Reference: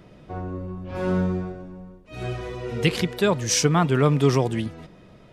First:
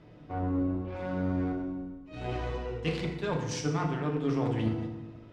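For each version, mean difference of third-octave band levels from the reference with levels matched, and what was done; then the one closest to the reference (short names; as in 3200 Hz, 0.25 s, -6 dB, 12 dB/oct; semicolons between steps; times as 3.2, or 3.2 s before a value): 5.5 dB: reverse; compressor 10:1, threshold -29 dBFS, peak gain reduction 16 dB; reverse; added harmonics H 7 -22 dB, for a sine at -18 dBFS; air absorption 84 m; FDN reverb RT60 1.1 s, low-frequency decay 1.35×, high-frequency decay 0.65×, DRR 0.5 dB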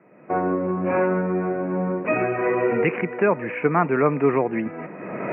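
9.5 dB: recorder AGC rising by 32 dB/s; steep low-pass 2500 Hz 96 dB/oct; gate -35 dBFS, range -6 dB; Bessel high-pass 270 Hz, order 4; gain +3 dB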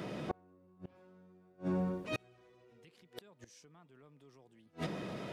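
16.0 dB: HPF 160 Hz 12 dB/oct; compressor 3:1, threshold -35 dBFS, peak gain reduction 15.5 dB; transient shaper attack -5 dB, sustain +1 dB; flipped gate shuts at -32 dBFS, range -35 dB; gain +9 dB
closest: first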